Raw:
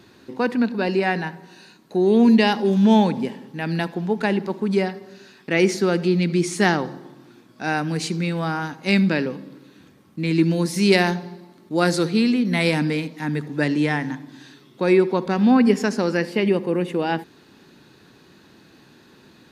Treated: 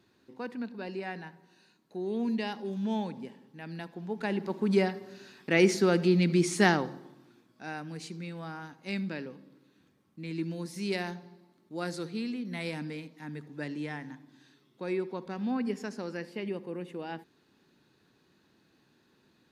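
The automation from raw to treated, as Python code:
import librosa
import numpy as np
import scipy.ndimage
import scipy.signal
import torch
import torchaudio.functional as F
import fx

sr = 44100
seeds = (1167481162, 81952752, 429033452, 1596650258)

y = fx.gain(x, sr, db=fx.line((3.87, -16.5), (4.7, -4.5), (6.64, -4.5), (7.74, -16.0)))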